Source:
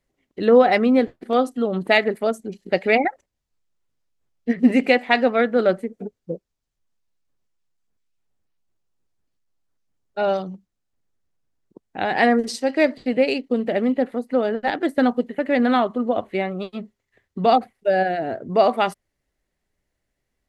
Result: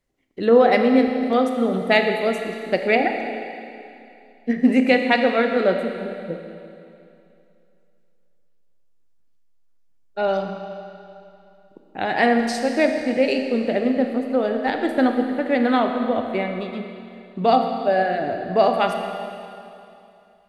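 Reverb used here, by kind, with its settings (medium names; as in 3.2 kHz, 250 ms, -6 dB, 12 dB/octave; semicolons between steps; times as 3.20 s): Schroeder reverb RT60 2.7 s, combs from 27 ms, DRR 4.5 dB; trim -1 dB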